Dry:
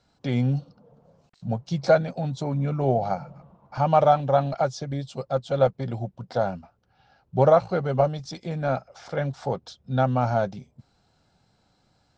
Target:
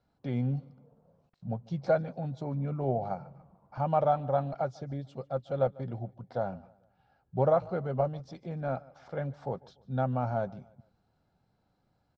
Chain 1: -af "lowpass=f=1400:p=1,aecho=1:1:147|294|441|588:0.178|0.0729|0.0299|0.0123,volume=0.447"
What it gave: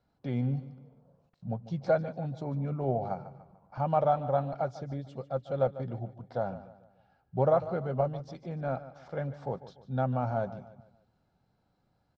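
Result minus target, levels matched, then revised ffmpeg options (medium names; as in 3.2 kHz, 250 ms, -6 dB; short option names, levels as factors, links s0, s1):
echo-to-direct +8 dB
-af "lowpass=f=1400:p=1,aecho=1:1:147|294|441:0.0708|0.029|0.0119,volume=0.447"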